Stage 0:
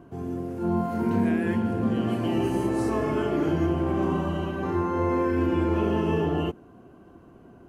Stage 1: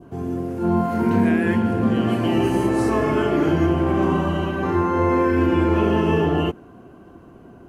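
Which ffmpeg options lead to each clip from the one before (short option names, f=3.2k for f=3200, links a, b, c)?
-af "adynamicequalizer=threshold=0.00891:dfrequency=1900:dqfactor=0.79:tfrequency=1900:tqfactor=0.79:attack=5:release=100:ratio=0.375:range=1.5:mode=boostabove:tftype=bell,volume=5.5dB"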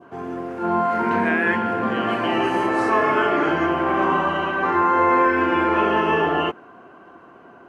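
-af "bandpass=f=1.4k:t=q:w=0.95:csg=0,volume=8.5dB"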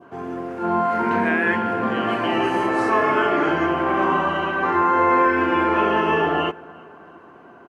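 -filter_complex "[0:a]asplit=2[a][b];[b]adelay=345,lowpass=f=2.1k:p=1,volume=-22.5dB,asplit=2[c][d];[d]adelay=345,lowpass=f=2.1k:p=1,volume=0.55,asplit=2[e][f];[f]adelay=345,lowpass=f=2.1k:p=1,volume=0.55,asplit=2[g][h];[h]adelay=345,lowpass=f=2.1k:p=1,volume=0.55[i];[a][c][e][g][i]amix=inputs=5:normalize=0"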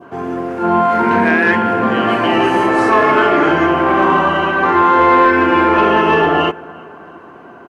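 -af "acontrast=82,volume=1dB"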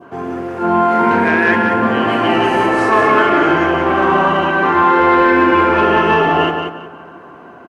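-af "aecho=1:1:181|362|543:0.501|0.12|0.0289,volume=-1dB"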